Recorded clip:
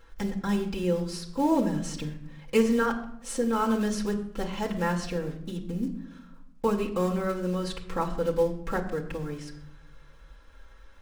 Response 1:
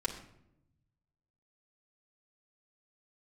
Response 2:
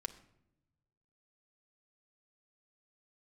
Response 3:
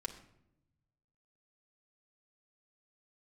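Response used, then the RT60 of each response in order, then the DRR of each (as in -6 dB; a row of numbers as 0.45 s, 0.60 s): 1; 0.80 s, 0.80 s, 0.80 s; -5.0 dB, 4.0 dB, -1.0 dB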